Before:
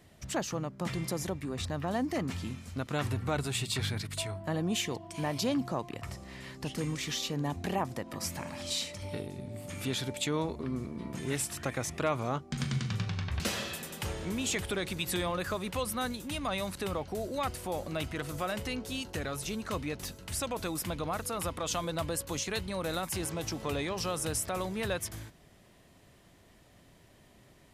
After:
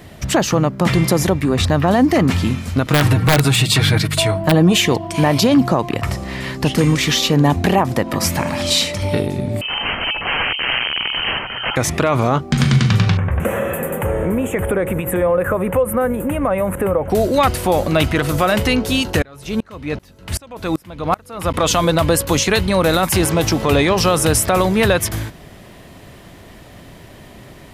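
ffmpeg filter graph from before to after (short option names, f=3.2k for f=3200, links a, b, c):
-filter_complex "[0:a]asettb=1/sr,asplit=3[a][b][c];[a]atrim=end=2.864[d];[b]atrim=start=2.86:end=4.8,asetpts=PTS-STARTPTS,afade=t=in:d=0.004:c=qsin,afade=t=out:st=1.936:d=0.004:c=qsin,aecho=1:1:6.4:0.59,atrim=end_sample=85554,aeval=exprs='(mod(9.44*val(0)+1,2)-1)/9.44':c=same[e];[c]atrim=start=4.796[f];[d][e]acrossfade=d=0.004:c1=hsin:c2=qsin[g];[g][f]acrossfade=d=0.004:c1=qsin:c2=hsin,asettb=1/sr,asplit=3[h][i][j];[h]atrim=end=9.614[k];[i]atrim=start=9.61:end=11.76,asetpts=PTS-STARTPTS,afade=t=in:d=0.004:c=qsin,afade=t=out:st=2.146:d=0.004:c=qsin,aeval=exprs='(mod(42.2*val(0)+1,2)-1)/42.2':c=same,lowpass=f=2.7k:t=q:w=0.5098,lowpass=f=2.7k:t=q:w=0.6013,lowpass=f=2.7k:t=q:w=0.9,lowpass=f=2.7k:t=q:w=2.563,afreqshift=-3200,lowshelf=f=240:g=10.5[l];[j]atrim=start=11.756[m];[k][l]acrossfade=d=0.004:c1=hsin:c2=qsin[n];[n][m]acrossfade=d=0.004:c1=qsin:c2=hsin,asettb=1/sr,asplit=3[o][p][q];[o]atrim=end=13.174[r];[p]atrim=start=13.17:end=17.1,asetpts=PTS-STARTPTS,afade=t=in:d=0.004:c=qsin,afade=t=out:st=3.926:d=0.004:c=qsin,equalizer=f=520:w=4.8:g=12,acompressor=threshold=-35dB:ratio=3:attack=3.2:release=140:knee=1:detection=peak,asuperstop=centerf=4600:order=4:qfactor=0.58[s];[q]atrim=start=17.096[t];[r][s]acrossfade=d=0.004:c1=hsin:c2=qsin[u];[u][t]acrossfade=d=0.004:c1=qsin:c2=hsin,asettb=1/sr,asplit=3[v][w][x];[v]atrim=end=19.224[y];[w]atrim=start=19.22:end=21.54,asetpts=PTS-STARTPTS,afade=t=in:d=0.004:c=qsin,afade=t=out:st=2.316:d=0.004:c=qsin,highshelf=f=4.8k:g=-5.5,aeval=exprs='val(0)*pow(10,-31*if(lt(mod(-2.6*n/s,1),2*abs(-2.6)/1000),1-mod(-2.6*n/s,1)/(2*abs(-2.6)/1000),(mod(-2.6*n/s,1)-2*abs(-2.6)/1000)/(1-2*abs(-2.6)/1000))/20)':c=same[z];[x]atrim=start=21.536[aa];[y][z]acrossfade=d=0.004:c1=hsin:c2=qsin[ab];[ab][aa]acrossfade=d=0.004:c1=qsin:c2=hsin,equalizer=f=7.5k:t=o:w=1.5:g=-5,alimiter=level_in=23.5dB:limit=-1dB:release=50:level=0:latency=1,volume=-3.5dB"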